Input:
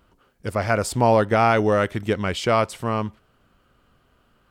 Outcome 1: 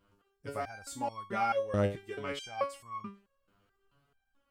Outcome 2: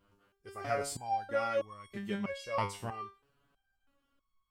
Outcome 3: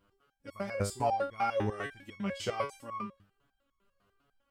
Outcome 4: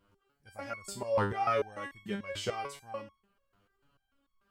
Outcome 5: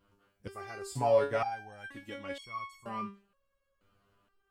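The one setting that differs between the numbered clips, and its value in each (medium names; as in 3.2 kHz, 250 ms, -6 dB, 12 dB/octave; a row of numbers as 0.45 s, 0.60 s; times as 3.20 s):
resonator arpeggio, rate: 4.6 Hz, 3.1 Hz, 10 Hz, 6.8 Hz, 2.1 Hz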